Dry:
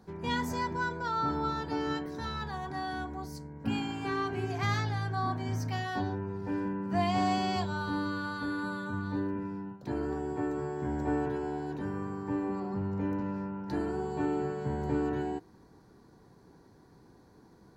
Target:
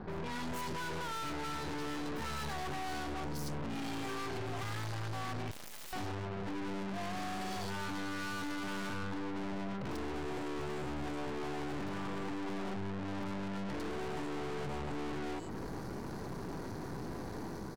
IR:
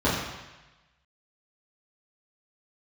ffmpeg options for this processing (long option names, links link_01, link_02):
-filter_complex "[0:a]acompressor=threshold=-38dB:ratio=6,alimiter=level_in=14.5dB:limit=-24dB:level=0:latency=1,volume=-14.5dB,dynaudnorm=framelen=150:gausssize=5:maxgain=6dB,acrossover=split=3200[link_01][link_02];[link_02]adelay=100[link_03];[link_01][link_03]amix=inputs=2:normalize=0,aeval=exprs='(tanh(562*val(0)+0.7)-tanh(0.7))/562':channel_layout=same,asettb=1/sr,asplit=3[link_04][link_05][link_06];[link_04]atrim=end=5.514[link_07];[link_05]atrim=start=5.51:end=5.93,asetpts=PTS-STARTPTS,afade=type=in:duration=0.004:curve=qsin,afade=type=out:start_time=0.416:duration=0.004:curve=qsin,aeval=exprs='(mod(562*val(0)+1,2)-1)/562':channel_layout=same[link_08];[link_06]atrim=start=5.926[link_09];[link_07][link_08]acrossfade=duration=0.004:curve1=hsin:curve2=qsin[link_10];[link_10][link_09]acrossfade=duration=0.004:curve1=qsin:curve2=hsin,volume=16.5dB"